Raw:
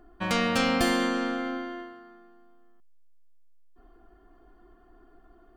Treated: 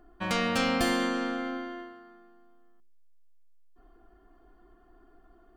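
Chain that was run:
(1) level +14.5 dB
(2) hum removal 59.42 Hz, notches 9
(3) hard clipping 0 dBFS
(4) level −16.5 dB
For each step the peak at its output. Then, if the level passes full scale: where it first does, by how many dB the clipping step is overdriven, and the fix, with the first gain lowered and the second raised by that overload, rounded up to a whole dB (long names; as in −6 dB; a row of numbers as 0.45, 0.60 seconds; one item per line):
+4.0, +3.5, 0.0, −16.5 dBFS
step 1, 3.5 dB
step 1 +10.5 dB, step 4 −12.5 dB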